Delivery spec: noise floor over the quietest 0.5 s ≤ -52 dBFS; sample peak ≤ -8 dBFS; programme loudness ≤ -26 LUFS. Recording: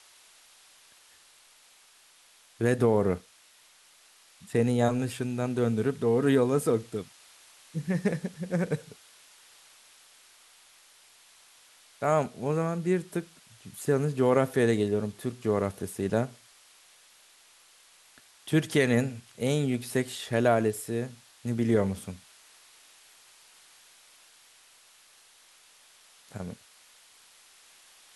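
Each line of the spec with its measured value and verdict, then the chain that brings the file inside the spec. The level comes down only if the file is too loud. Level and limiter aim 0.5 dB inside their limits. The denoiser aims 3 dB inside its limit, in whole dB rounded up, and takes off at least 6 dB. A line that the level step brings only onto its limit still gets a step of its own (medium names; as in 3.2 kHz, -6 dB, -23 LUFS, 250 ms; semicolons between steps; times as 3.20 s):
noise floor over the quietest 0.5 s -59 dBFS: pass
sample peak -9.5 dBFS: pass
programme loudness -28.0 LUFS: pass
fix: none needed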